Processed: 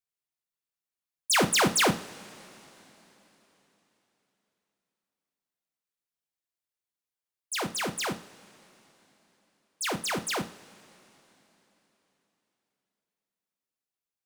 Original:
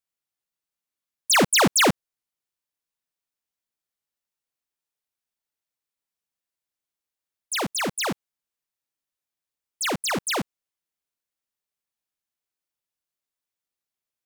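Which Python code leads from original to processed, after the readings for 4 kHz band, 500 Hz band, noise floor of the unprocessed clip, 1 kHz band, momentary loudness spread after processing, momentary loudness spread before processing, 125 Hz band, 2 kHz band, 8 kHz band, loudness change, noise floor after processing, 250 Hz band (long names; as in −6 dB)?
−5.0 dB, −5.0 dB, below −85 dBFS, −4.5 dB, 20 LU, 19 LU, −4.0 dB, −4.5 dB, −5.0 dB, −5.0 dB, below −85 dBFS, −5.0 dB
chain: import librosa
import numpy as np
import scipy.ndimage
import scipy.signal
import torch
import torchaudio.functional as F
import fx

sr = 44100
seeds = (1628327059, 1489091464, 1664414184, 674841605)

y = fx.rev_double_slope(x, sr, seeds[0], early_s=0.4, late_s=3.8, knee_db=-20, drr_db=7.5)
y = y * 10.0 ** (-5.5 / 20.0)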